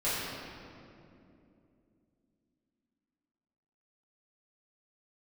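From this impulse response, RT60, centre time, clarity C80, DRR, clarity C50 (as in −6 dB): 2.7 s, 152 ms, −1.0 dB, −12.5 dB, −3.0 dB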